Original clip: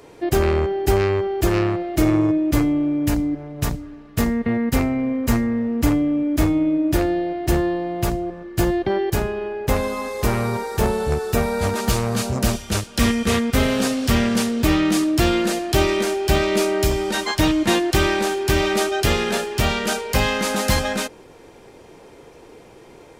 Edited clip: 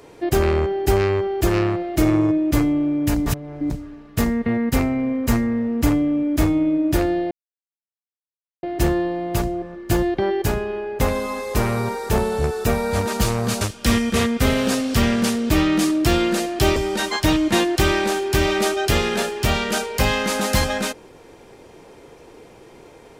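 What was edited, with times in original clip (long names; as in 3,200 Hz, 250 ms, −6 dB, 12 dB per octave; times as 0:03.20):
0:03.26–0:03.70: reverse
0:07.31: splice in silence 1.32 s
0:12.29–0:12.74: remove
0:15.89–0:16.91: remove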